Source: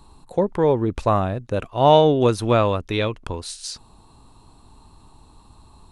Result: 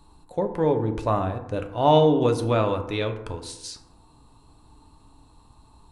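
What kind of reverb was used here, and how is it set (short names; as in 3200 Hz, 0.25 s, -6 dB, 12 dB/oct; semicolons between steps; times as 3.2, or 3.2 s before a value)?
FDN reverb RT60 0.97 s, low-frequency decay 1.1×, high-frequency decay 0.4×, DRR 5.5 dB; gain -5.5 dB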